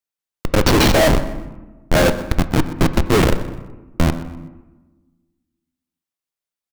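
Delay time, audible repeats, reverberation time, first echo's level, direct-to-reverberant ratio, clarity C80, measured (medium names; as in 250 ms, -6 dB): 125 ms, 3, 1.2 s, -16.5 dB, 10.5 dB, 12.5 dB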